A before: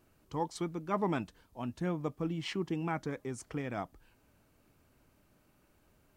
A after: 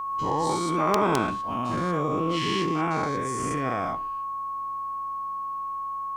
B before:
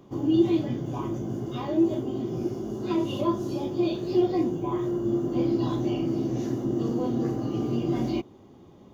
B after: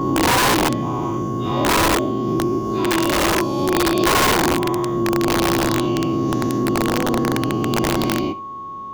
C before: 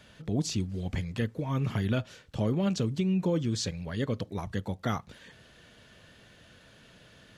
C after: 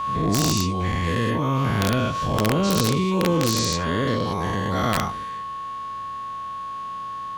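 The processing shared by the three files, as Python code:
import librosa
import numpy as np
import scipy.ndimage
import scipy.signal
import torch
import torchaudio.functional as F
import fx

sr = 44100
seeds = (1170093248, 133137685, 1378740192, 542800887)

p1 = fx.spec_dilate(x, sr, span_ms=240)
p2 = p1 + fx.room_flutter(p1, sr, wall_m=11.5, rt60_s=0.23, dry=0)
p3 = (np.mod(10.0 ** (14.0 / 20.0) * p2 + 1.0, 2.0) - 1.0) / 10.0 ** (14.0 / 20.0)
p4 = p3 + 10.0 ** (-31.0 / 20.0) * np.sin(2.0 * np.pi * 1100.0 * np.arange(len(p3)) / sr)
p5 = fx.pre_swell(p4, sr, db_per_s=26.0)
y = F.gain(torch.from_numpy(p5), 2.0).numpy()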